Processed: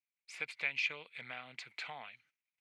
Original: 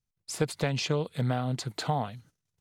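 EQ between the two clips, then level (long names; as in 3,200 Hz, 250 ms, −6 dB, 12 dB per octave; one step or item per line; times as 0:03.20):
resonant band-pass 2,300 Hz, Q 7.5
+8.5 dB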